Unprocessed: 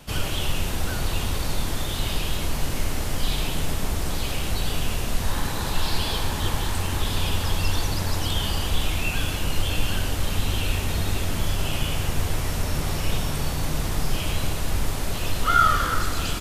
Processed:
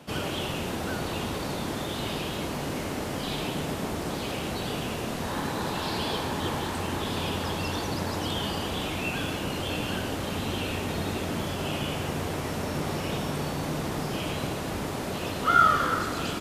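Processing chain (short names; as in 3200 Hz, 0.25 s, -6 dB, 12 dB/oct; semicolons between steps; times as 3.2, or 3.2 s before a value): HPF 240 Hz 12 dB/oct; tilt -2.5 dB/oct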